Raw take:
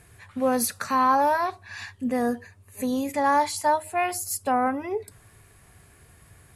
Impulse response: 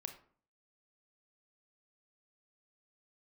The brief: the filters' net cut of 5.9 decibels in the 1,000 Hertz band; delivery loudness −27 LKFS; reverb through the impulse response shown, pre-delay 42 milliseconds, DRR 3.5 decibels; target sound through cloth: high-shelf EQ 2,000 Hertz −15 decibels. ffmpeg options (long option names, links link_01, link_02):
-filter_complex "[0:a]equalizer=frequency=1000:width_type=o:gain=-4,asplit=2[link_01][link_02];[1:a]atrim=start_sample=2205,adelay=42[link_03];[link_02][link_03]afir=irnorm=-1:irlink=0,volume=-0.5dB[link_04];[link_01][link_04]amix=inputs=2:normalize=0,highshelf=frequency=2000:gain=-15,volume=0.5dB"